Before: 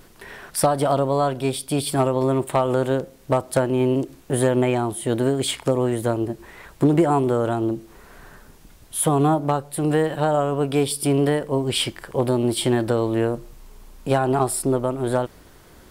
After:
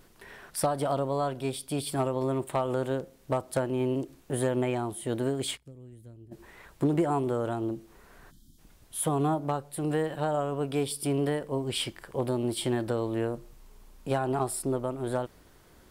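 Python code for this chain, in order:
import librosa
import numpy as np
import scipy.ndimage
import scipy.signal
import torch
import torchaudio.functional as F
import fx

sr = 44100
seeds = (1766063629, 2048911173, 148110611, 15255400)

y = fx.tone_stack(x, sr, knobs='10-0-1', at=(5.56, 6.31), fade=0.02)
y = fx.spec_box(y, sr, start_s=8.31, length_s=0.28, low_hz=350.0, high_hz=3000.0, gain_db=-28)
y = y * 10.0 ** (-8.5 / 20.0)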